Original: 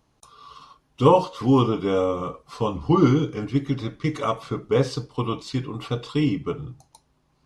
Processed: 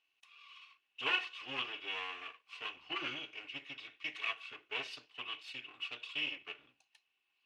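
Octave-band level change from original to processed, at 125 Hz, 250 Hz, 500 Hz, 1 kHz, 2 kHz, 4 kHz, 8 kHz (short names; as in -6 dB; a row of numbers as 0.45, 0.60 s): under -40 dB, -33.0 dB, -30.0 dB, -20.0 dB, +1.0 dB, -2.5 dB, -18.0 dB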